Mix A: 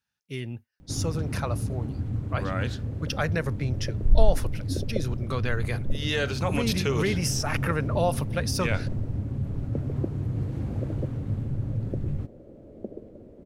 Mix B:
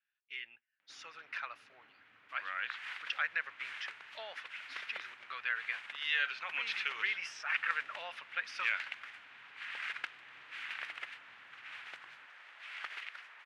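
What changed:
second sound: remove elliptic band-pass 210–580 Hz; master: add Butterworth band-pass 2100 Hz, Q 1.3

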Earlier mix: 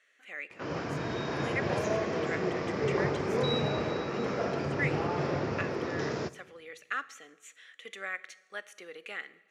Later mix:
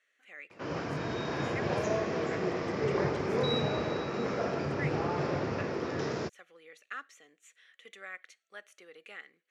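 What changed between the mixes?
speech -6.5 dB; reverb: off

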